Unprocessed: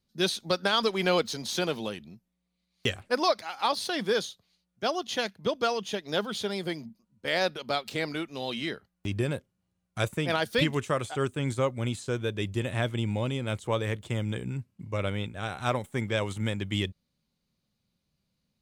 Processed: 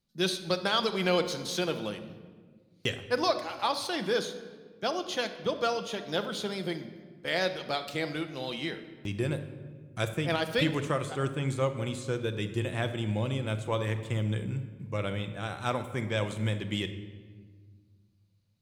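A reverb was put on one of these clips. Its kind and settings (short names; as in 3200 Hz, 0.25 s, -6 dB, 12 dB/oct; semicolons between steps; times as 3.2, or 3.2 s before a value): shoebox room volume 1700 m³, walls mixed, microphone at 0.75 m; gain -2.5 dB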